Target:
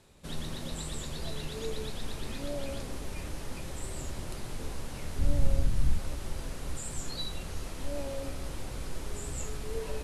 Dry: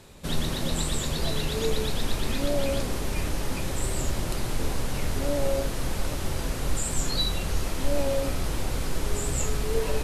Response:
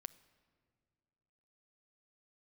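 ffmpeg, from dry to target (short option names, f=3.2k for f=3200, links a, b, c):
-filter_complex "[0:a]asplit=3[a][b][c];[a]afade=t=out:st=5.18:d=0.02[d];[b]asubboost=boost=6:cutoff=180,afade=t=in:st=5.18:d=0.02,afade=t=out:st=5.97:d=0.02[e];[c]afade=t=in:st=5.97:d=0.02[f];[d][e][f]amix=inputs=3:normalize=0[g];[1:a]atrim=start_sample=2205,asetrate=22491,aresample=44100[h];[g][h]afir=irnorm=-1:irlink=0,volume=-8.5dB"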